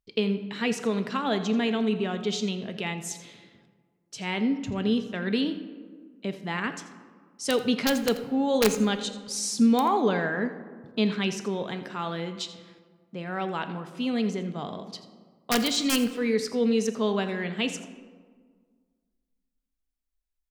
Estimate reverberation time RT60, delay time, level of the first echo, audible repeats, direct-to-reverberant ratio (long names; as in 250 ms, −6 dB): 1.7 s, 84 ms, −16.0 dB, 1, 8.0 dB